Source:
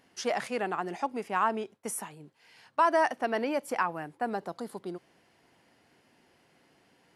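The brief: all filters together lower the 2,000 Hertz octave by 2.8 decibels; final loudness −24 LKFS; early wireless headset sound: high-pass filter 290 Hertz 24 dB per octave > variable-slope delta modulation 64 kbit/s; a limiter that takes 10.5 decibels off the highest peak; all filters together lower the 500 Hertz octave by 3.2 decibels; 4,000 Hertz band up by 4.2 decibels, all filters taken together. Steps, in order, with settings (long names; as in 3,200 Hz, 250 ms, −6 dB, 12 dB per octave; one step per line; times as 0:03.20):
parametric band 500 Hz −4 dB
parametric band 2,000 Hz −5 dB
parametric band 4,000 Hz +8 dB
brickwall limiter −25 dBFS
high-pass filter 290 Hz 24 dB per octave
variable-slope delta modulation 64 kbit/s
level +14 dB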